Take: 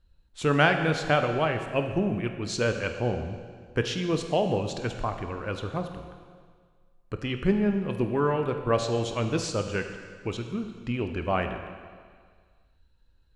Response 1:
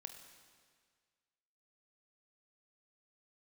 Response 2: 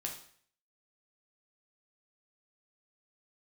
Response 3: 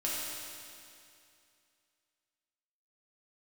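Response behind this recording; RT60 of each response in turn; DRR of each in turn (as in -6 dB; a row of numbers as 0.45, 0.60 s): 1; 1.8, 0.55, 2.5 s; 5.5, 0.0, -6.5 dB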